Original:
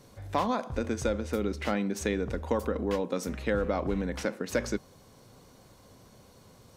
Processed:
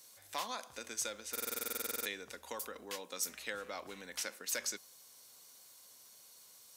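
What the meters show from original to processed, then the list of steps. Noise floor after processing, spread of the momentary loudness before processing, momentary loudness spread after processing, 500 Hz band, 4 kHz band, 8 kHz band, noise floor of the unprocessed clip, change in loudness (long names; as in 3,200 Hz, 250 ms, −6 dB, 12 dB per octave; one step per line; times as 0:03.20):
−60 dBFS, 4 LU, 19 LU, −16.5 dB, +0.5 dB, +4.5 dB, −57 dBFS, −8.5 dB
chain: first difference
buffer that repeats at 0:01.31, samples 2,048, times 15
level +6 dB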